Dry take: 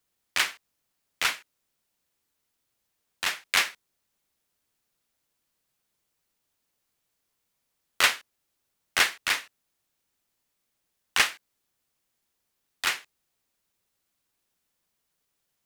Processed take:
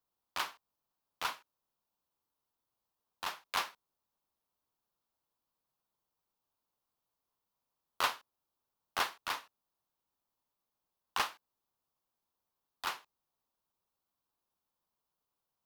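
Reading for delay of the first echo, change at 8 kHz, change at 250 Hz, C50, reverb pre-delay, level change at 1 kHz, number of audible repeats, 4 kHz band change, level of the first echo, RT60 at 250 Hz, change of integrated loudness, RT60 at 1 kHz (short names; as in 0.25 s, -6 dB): none, -15.0 dB, -8.0 dB, none, none, -3.5 dB, none, -12.5 dB, none, none, -11.5 dB, none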